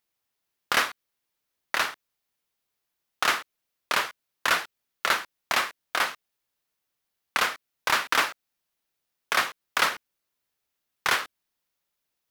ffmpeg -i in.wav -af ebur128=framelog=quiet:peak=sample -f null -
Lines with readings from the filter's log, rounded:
Integrated loudness:
  I:         -26.7 LUFS
  Threshold: -37.2 LUFS
Loudness range:
  LRA:         3.3 LU
  Threshold: -48.9 LUFS
  LRA low:   -30.7 LUFS
  LRA high:  -27.4 LUFS
Sample peak:
  Peak:       -7.1 dBFS